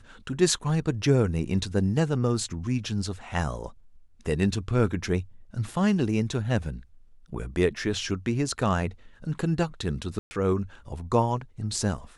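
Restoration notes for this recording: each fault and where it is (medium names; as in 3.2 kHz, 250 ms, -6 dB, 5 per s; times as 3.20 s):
10.19–10.31 s: dropout 120 ms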